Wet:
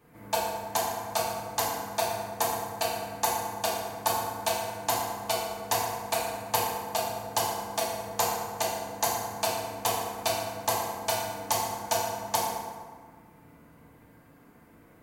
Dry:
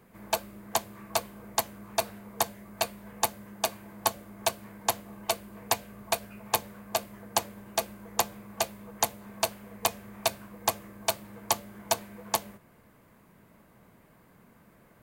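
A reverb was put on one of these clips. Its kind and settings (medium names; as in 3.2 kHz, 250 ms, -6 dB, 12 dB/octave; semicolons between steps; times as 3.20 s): FDN reverb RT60 1.7 s, low-frequency decay 1.05×, high-frequency decay 0.55×, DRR -6.5 dB; trim -5 dB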